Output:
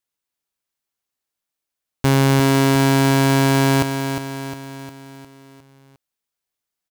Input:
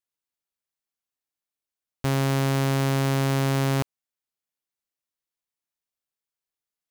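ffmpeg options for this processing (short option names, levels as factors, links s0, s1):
-filter_complex "[0:a]asplit=2[s0][s1];[s1]acrusher=bits=3:mix=0:aa=0.000001,volume=0.316[s2];[s0][s2]amix=inputs=2:normalize=0,aecho=1:1:356|712|1068|1424|1780|2136:0.422|0.219|0.114|0.0593|0.0308|0.016,volume=1.88"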